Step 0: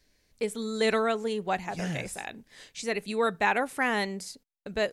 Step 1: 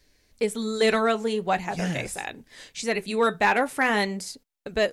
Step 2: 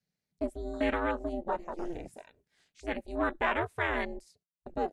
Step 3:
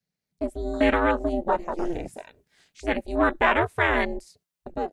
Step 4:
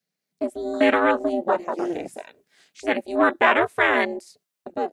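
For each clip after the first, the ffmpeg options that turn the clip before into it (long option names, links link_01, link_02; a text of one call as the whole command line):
ffmpeg -i in.wav -filter_complex "[0:a]flanger=delay=2.2:depth=6:regen=-69:speed=0.44:shape=sinusoidal,asplit=2[link_01][link_02];[link_02]aeval=exprs='0.0631*(abs(mod(val(0)/0.0631+3,4)-2)-1)':channel_layout=same,volume=-10dB[link_03];[link_01][link_03]amix=inputs=2:normalize=0,volume=6.5dB" out.wav
ffmpeg -i in.wav -af "aeval=exprs='val(0)*sin(2*PI*170*n/s)':channel_layout=same,afwtdn=0.0282,volume=-5dB" out.wav
ffmpeg -i in.wav -af "dynaudnorm=framelen=200:gausssize=5:maxgain=9dB" out.wav
ffmpeg -i in.wav -af "highpass=230,bandreject=frequency=910:width=17,volume=3.5dB" out.wav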